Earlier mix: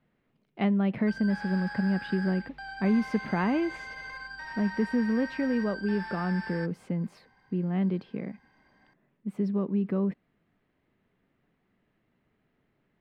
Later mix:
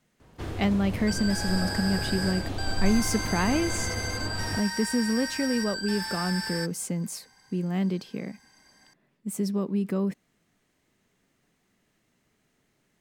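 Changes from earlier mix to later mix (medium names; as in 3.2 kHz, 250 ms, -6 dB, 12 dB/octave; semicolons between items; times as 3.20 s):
first sound: unmuted; master: remove distance through air 410 m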